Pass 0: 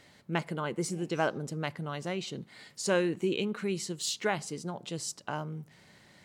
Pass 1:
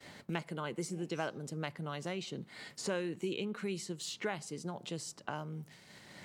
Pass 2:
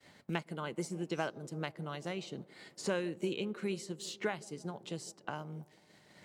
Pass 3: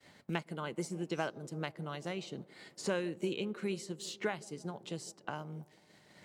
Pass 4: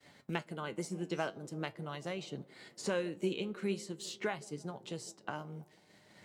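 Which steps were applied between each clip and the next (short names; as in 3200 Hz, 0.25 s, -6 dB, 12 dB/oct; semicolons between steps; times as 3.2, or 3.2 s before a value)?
expander -52 dBFS; three-band squash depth 70%; gain -6 dB
band-limited delay 0.164 s, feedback 83%, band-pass 410 Hz, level -17 dB; upward expander 1.5:1, over -56 dBFS; gain +2.5 dB
nothing audible
flange 0.44 Hz, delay 6.6 ms, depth 4.7 ms, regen +70%; gain +4 dB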